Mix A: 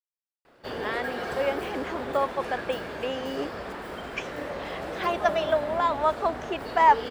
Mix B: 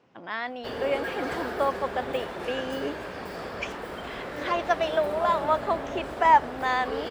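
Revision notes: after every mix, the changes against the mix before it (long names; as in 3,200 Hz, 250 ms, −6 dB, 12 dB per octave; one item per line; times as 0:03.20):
speech: entry −0.55 s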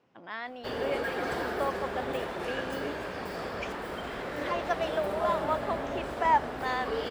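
speech −6.0 dB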